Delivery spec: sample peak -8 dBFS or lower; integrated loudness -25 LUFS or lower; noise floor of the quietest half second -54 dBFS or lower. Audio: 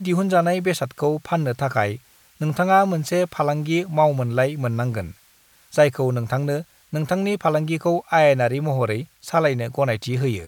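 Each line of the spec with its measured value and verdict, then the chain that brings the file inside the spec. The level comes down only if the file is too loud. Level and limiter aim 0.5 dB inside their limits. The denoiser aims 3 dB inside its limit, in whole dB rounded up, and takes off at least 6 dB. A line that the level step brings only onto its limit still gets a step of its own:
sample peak -4.0 dBFS: fail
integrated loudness -21.5 LUFS: fail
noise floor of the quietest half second -56 dBFS: OK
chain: gain -4 dB; limiter -8.5 dBFS

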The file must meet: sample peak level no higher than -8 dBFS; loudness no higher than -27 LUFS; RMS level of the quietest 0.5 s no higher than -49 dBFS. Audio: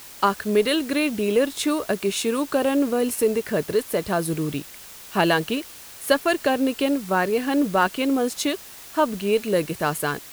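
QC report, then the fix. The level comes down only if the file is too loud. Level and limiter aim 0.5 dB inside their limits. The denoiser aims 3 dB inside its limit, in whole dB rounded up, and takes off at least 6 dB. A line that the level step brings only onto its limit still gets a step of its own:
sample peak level -4.0 dBFS: fail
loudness -23.0 LUFS: fail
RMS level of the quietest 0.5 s -42 dBFS: fail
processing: denoiser 6 dB, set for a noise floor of -42 dBFS; gain -4.5 dB

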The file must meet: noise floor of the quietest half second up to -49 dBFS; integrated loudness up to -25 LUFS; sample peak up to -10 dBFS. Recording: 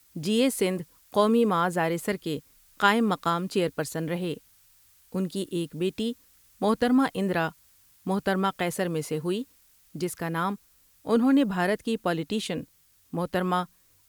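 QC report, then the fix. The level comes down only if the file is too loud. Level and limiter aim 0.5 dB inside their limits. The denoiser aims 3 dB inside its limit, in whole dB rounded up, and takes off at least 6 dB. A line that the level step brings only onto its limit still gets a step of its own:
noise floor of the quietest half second -60 dBFS: OK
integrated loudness -27.0 LUFS: OK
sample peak -7.5 dBFS: fail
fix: limiter -10.5 dBFS

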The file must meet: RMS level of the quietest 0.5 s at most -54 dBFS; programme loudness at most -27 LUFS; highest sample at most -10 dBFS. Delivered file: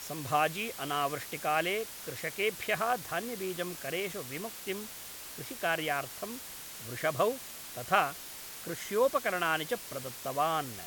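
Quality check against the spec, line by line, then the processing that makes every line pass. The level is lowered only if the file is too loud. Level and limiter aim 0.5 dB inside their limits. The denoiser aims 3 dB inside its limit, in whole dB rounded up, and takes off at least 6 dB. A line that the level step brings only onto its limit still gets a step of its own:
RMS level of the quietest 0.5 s -45 dBFS: fail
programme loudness -33.0 LUFS: OK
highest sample -12.0 dBFS: OK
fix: denoiser 12 dB, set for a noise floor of -45 dBFS

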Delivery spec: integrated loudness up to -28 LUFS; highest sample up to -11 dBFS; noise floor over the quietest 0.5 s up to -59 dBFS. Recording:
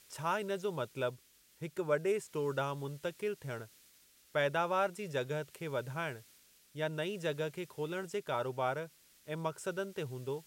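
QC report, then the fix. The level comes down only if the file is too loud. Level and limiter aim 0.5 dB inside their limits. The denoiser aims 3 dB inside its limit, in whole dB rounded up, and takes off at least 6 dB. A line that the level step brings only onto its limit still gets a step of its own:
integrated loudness -37.0 LUFS: OK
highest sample -18.0 dBFS: OK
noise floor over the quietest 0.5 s -65 dBFS: OK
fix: none

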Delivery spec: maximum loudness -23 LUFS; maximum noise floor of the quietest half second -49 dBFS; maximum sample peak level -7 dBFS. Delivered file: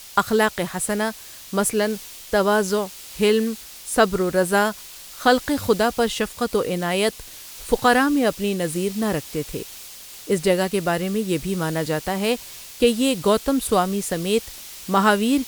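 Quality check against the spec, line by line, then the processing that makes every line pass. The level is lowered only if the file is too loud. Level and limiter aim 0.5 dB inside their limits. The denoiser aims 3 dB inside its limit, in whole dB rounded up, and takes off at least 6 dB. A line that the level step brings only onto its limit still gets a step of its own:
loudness -21.5 LUFS: fail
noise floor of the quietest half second -40 dBFS: fail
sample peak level -3.5 dBFS: fail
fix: denoiser 10 dB, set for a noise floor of -40 dBFS; gain -2 dB; limiter -7.5 dBFS

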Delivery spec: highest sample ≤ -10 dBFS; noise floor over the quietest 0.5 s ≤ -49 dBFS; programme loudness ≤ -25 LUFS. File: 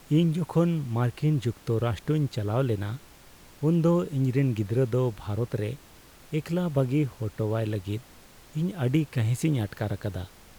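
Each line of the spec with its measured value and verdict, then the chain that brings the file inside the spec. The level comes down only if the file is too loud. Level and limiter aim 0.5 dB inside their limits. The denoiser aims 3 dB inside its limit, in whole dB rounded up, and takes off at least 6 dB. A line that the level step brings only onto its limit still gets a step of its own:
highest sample -12.5 dBFS: OK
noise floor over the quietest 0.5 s -52 dBFS: OK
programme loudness -27.5 LUFS: OK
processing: none

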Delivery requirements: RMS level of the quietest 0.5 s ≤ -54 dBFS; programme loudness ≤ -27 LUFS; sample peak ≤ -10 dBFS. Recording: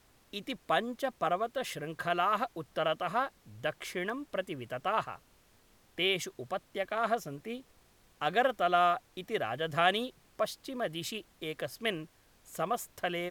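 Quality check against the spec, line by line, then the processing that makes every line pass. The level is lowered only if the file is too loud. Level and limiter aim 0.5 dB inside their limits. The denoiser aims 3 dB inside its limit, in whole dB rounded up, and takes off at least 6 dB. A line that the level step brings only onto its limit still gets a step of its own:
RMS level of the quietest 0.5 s -64 dBFS: OK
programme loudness -33.5 LUFS: OK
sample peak -12.0 dBFS: OK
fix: none

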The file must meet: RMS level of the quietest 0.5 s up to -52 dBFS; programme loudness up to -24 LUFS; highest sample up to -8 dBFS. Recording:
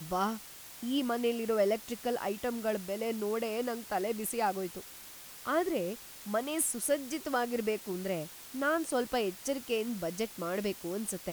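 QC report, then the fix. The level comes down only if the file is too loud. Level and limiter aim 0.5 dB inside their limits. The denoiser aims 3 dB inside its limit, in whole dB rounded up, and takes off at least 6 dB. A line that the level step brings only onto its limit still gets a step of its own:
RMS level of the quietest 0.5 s -49 dBFS: fail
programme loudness -33.5 LUFS: OK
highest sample -15.5 dBFS: OK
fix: denoiser 6 dB, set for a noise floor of -49 dBFS

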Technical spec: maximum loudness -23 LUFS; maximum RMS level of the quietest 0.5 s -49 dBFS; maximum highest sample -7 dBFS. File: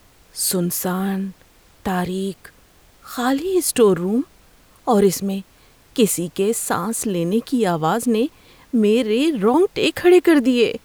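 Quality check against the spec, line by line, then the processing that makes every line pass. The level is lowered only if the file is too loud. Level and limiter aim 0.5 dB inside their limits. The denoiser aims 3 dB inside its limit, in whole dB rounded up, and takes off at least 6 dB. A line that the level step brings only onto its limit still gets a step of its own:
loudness -19.0 LUFS: fail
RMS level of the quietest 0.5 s -52 dBFS: OK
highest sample -4.0 dBFS: fail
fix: gain -4.5 dB

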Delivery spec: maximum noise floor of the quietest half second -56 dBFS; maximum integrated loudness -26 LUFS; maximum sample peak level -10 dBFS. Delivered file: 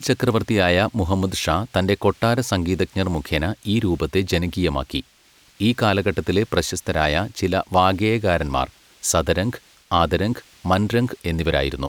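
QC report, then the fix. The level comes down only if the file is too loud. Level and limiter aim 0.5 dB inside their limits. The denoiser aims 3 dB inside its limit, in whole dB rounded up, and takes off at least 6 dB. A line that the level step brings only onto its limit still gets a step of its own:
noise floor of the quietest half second -55 dBFS: fail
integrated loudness -21.0 LUFS: fail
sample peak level -3.5 dBFS: fail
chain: gain -5.5 dB; limiter -10.5 dBFS

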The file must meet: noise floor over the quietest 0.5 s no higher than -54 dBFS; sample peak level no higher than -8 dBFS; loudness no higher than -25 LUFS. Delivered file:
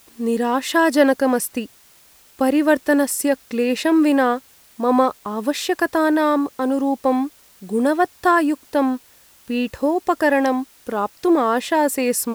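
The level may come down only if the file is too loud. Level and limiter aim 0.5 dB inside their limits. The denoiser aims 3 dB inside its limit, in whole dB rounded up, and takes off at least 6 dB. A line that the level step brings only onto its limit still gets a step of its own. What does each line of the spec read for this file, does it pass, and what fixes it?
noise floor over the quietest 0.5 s -51 dBFS: fail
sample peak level -2.5 dBFS: fail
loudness -19.5 LUFS: fail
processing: gain -6 dB

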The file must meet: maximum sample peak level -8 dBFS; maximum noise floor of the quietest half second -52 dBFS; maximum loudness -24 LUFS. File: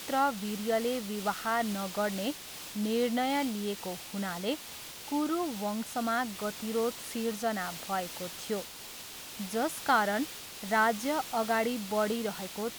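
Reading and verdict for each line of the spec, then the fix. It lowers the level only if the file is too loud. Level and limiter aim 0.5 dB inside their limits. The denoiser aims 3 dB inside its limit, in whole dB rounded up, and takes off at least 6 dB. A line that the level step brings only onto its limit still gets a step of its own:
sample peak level -14.5 dBFS: OK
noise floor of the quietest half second -45 dBFS: fail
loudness -32.0 LUFS: OK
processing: denoiser 10 dB, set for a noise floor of -45 dBFS

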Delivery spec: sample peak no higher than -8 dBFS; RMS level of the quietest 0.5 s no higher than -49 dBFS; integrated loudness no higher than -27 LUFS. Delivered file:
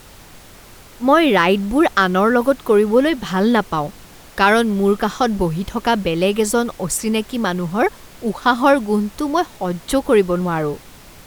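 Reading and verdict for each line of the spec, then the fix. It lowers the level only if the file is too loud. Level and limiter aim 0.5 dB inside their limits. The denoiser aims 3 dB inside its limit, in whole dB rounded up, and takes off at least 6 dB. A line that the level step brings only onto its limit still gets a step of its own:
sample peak -2.5 dBFS: fail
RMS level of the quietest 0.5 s -42 dBFS: fail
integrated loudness -17.5 LUFS: fail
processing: gain -10 dB

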